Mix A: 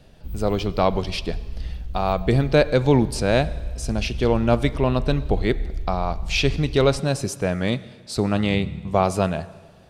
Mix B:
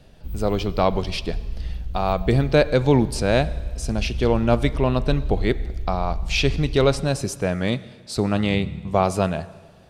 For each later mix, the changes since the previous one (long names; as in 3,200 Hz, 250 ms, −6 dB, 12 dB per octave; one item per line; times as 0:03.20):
background: send on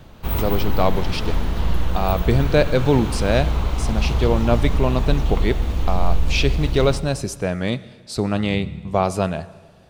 background: remove guitar amp tone stack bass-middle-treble 10-0-1